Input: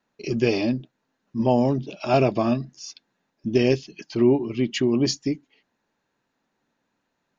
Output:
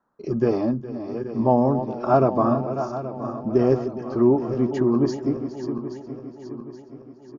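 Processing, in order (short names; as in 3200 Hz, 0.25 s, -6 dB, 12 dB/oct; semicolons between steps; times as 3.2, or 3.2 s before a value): regenerating reverse delay 0.413 s, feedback 68%, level -10 dB; resonant high shelf 1800 Hz -13 dB, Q 3; echo 0.414 s -16 dB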